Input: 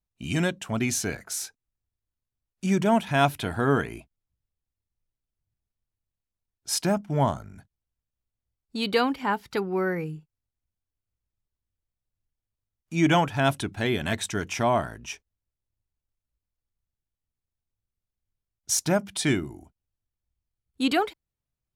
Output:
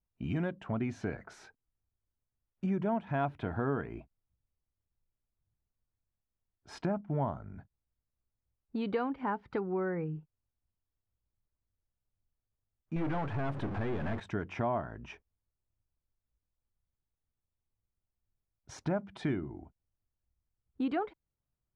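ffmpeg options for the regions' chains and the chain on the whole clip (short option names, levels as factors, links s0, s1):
-filter_complex "[0:a]asettb=1/sr,asplit=3[s0][s1][s2];[s0]atrim=end=12.964[s3];[s1]atrim=start=12.96:end=14.2,asetpts=PTS-STARTPTS,afade=t=in:d=0.004:c=qsin,afade=t=out:st=1.236:d=0.004:c=qsin,aeval=exprs='val(0)+0.5*0.0631*sgn(val(0))':c=same,aeval=exprs='(tanh(14.1*val(0)+0.7)-tanh(0.7))/14.1':c=same,acrusher=bits=7:mix=0:aa=0.5[s4];[s2]atrim=start=14.196[s5];[s3][s4]acrossfade=d=0.004:c1=hsin:c2=qsin[s6];[s6][s5]acrossfade=d=0.004:c1=qsin:c2=hsin,lowpass=1400,acompressor=threshold=0.0224:ratio=2.5"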